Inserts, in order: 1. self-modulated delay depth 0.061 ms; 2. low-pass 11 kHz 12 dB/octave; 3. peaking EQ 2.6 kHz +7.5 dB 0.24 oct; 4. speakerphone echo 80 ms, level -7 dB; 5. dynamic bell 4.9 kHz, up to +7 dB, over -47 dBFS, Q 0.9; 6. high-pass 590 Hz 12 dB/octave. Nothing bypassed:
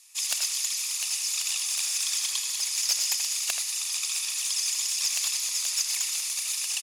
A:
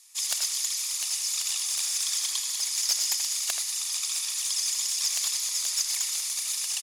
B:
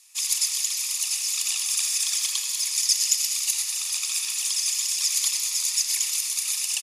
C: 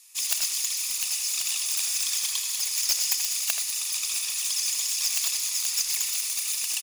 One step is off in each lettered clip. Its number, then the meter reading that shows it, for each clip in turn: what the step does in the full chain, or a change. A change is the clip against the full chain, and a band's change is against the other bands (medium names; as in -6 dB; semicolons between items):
3, 2 kHz band -4.0 dB; 1, 1 kHz band -3.5 dB; 2, loudness change +1.0 LU